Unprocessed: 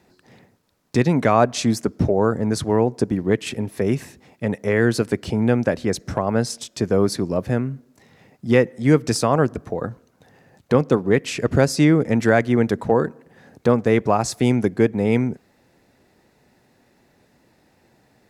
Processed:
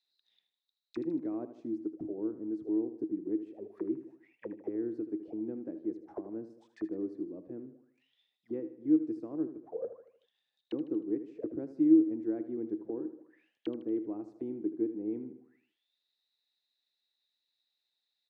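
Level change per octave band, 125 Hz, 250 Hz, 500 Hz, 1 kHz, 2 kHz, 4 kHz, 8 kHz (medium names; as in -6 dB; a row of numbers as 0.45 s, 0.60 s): -32.5 dB, -11.0 dB, -19.0 dB, under -30 dB, under -35 dB, under -30 dB, under -40 dB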